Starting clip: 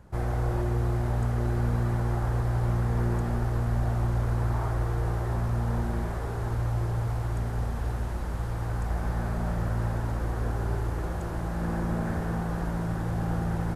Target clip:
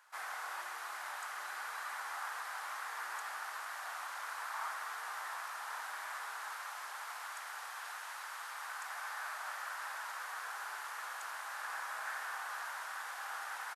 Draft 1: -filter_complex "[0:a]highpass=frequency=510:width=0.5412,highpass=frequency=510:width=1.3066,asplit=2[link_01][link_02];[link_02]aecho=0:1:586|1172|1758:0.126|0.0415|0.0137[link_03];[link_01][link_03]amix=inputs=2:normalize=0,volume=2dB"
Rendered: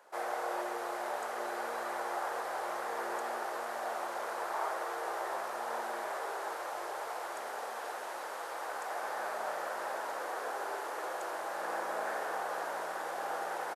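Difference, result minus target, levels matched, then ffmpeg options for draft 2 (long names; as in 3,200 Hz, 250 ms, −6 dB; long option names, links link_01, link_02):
500 Hz band +15.0 dB
-filter_complex "[0:a]highpass=frequency=1100:width=0.5412,highpass=frequency=1100:width=1.3066,asplit=2[link_01][link_02];[link_02]aecho=0:1:586|1172|1758:0.126|0.0415|0.0137[link_03];[link_01][link_03]amix=inputs=2:normalize=0,volume=2dB"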